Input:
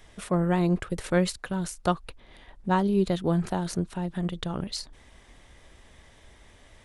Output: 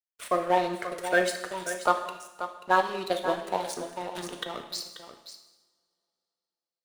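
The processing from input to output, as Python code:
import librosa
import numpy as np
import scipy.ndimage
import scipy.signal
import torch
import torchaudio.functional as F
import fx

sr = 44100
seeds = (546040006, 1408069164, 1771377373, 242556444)

p1 = fx.spec_quant(x, sr, step_db=30)
p2 = scipy.signal.sosfilt(scipy.signal.butter(2, 580.0, 'highpass', fs=sr, output='sos'), p1)
p3 = fx.level_steps(p2, sr, step_db=15)
p4 = p2 + (p3 * 10.0 ** (1.5 / 20.0))
p5 = np.sign(p4) * np.maximum(np.abs(p4) - 10.0 ** (-39.5 / 20.0), 0.0)
p6 = p5 + 10.0 ** (-11.0 / 20.0) * np.pad(p5, (int(535 * sr / 1000.0), 0))[:len(p5)]
p7 = fx.rev_double_slope(p6, sr, seeds[0], early_s=0.93, late_s=3.1, knee_db=-25, drr_db=5.0)
y = fx.band_squash(p7, sr, depth_pct=70, at=(4.15, 4.63))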